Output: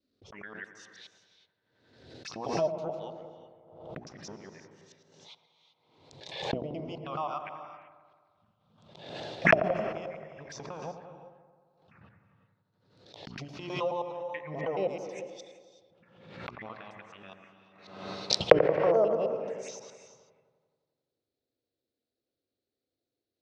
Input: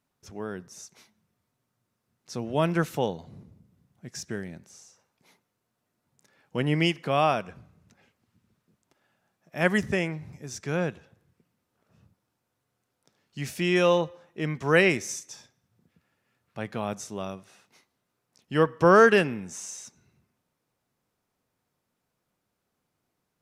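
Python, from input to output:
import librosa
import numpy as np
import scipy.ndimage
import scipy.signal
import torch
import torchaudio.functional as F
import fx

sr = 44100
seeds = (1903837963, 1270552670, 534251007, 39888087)

y = fx.local_reverse(x, sr, ms=107.0)
y = fx.recorder_agc(y, sr, target_db=-15.5, rise_db_per_s=34.0, max_gain_db=30)
y = fx.hum_notches(y, sr, base_hz=60, count=7)
y = fx.env_lowpass(y, sr, base_hz=330.0, full_db=-20.0)
y = scipy.signal.sosfilt(scipy.signal.bessel(2, 11000.0, 'lowpass', norm='mag', fs=sr, output='sos'), y)
y = fx.bass_treble(y, sr, bass_db=8, treble_db=14)
y = fx.env_phaser(y, sr, low_hz=150.0, high_hz=1700.0, full_db=-19.5)
y = fx.auto_wah(y, sr, base_hz=640.0, top_hz=4300.0, q=5.2, full_db=-16.0, direction='down')
y = fx.echo_wet_lowpass(y, sr, ms=88, feedback_pct=70, hz=1300.0, wet_db=-9)
y = fx.rev_gated(y, sr, seeds[0], gate_ms=410, shape='rising', drr_db=10.5)
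y = fx.pre_swell(y, sr, db_per_s=61.0)
y = F.gain(torch.from_numpy(y), 2.0).numpy()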